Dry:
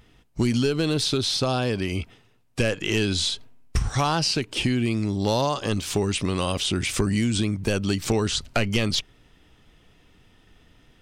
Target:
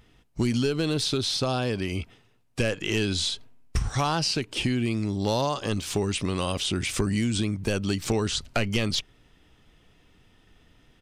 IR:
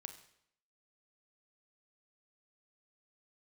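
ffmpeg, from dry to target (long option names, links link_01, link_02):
-af "aresample=32000,aresample=44100,volume=-2.5dB"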